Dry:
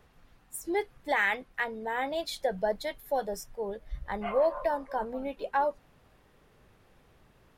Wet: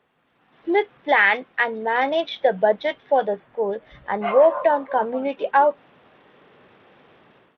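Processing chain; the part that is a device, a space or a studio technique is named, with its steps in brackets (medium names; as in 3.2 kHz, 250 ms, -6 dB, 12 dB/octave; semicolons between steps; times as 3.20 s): 3.33–4.28 s: dynamic bell 4.4 kHz, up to -8 dB, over -58 dBFS, Q 0.82; Bluetooth headset (high-pass 220 Hz 12 dB/octave; level rider gain up to 14.5 dB; resampled via 8 kHz; trim -2.5 dB; SBC 64 kbps 32 kHz)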